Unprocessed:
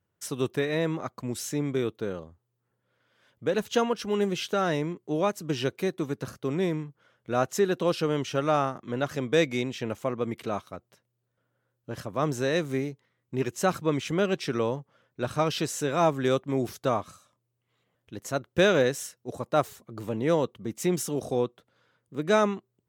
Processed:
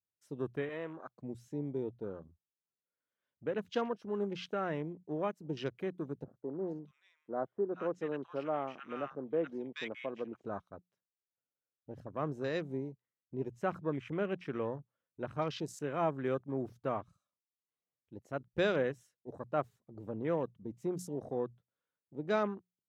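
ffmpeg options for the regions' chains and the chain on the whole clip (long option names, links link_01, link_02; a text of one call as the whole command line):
ffmpeg -i in.wav -filter_complex "[0:a]asettb=1/sr,asplit=3[link_01][link_02][link_03];[link_01]atrim=end=0.694[link_04];[link_02]atrim=start=0.69:end=1.19,asetpts=PTS-STARTPTS,afade=type=in:duration=0.004:curve=qsin,afade=type=out:start_time=0.496:duration=0.004:curve=qsin,aeval=exprs='if(lt(val(0),0),0.708*val(0),val(0))':channel_layout=same,highpass=frequency=420:poles=1[link_05];[link_03]atrim=start=1.186[link_06];[link_04][link_05]acrossfade=duration=0.004:curve1=hsin:curve2=qsin[link_07];[link_07][link_06]acrossfade=duration=0.004:curve1=qsin:curve2=hsin,asettb=1/sr,asplit=3[link_08][link_09][link_10];[link_08]atrim=end=6.244[link_11];[link_09]atrim=start=6.24:end=10.45,asetpts=PTS-STARTPTS,afade=type=in:duration=0.004:curve=qsin,afade=type=out:start_time=4.206:duration=0.004:curve=qsin,highpass=230,lowpass=6300,acrossover=split=1300[link_12][link_13];[link_13]adelay=430[link_14];[link_12][link_14]amix=inputs=2:normalize=0,atrim=end_sample=185661[link_15];[link_10]atrim=start=10.446[link_16];[link_11][link_15]acrossfade=duration=0.004:curve1=hsin:curve2=qsin[link_17];[link_17][link_16]acrossfade=duration=0.004:curve1=qsin:curve2=hsin,bandreject=frequency=60:width_type=h:width=6,bandreject=frequency=120:width_type=h:width=6,bandreject=frequency=180:width_type=h:width=6,afwtdn=0.0126,highshelf=frequency=4800:gain=-7,volume=-9dB" out.wav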